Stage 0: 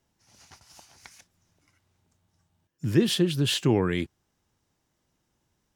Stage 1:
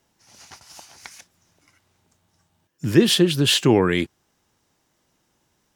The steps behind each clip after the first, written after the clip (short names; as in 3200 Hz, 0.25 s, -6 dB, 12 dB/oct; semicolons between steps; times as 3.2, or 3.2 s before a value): low shelf 160 Hz -9 dB; gain +8.5 dB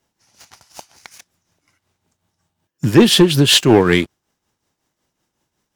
tremolo triangle 5.4 Hz, depth 65%; sample leveller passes 2; gain +3 dB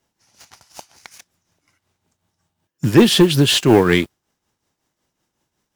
de-esser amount 30%; modulation noise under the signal 30 dB; gain -1 dB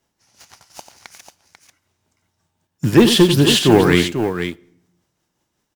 tapped delay 91/492 ms -10/-8.5 dB; on a send at -23.5 dB: reverb RT60 0.80 s, pre-delay 3 ms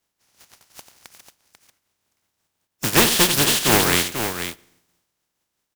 spectral contrast lowered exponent 0.38; gain -5 dB